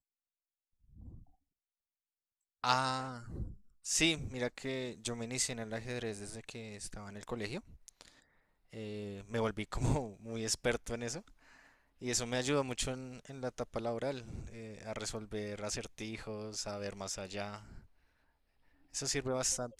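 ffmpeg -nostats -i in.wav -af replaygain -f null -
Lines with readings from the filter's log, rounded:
track_gain = +18.2 dB
track_peak = 0.175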